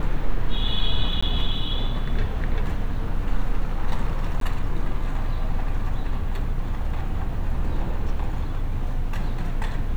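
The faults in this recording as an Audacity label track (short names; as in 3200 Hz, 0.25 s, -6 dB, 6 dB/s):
1.210000	1.230000	gap 15 ms
4.400000	4.410000	gap 13 ms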